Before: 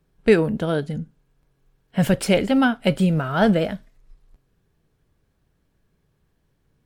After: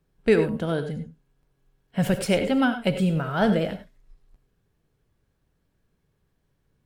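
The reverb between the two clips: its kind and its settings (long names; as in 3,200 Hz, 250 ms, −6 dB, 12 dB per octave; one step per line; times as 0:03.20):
reverb whose tail is shaped and stops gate 120 ms rising, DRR 8.5 dB
level −4 dB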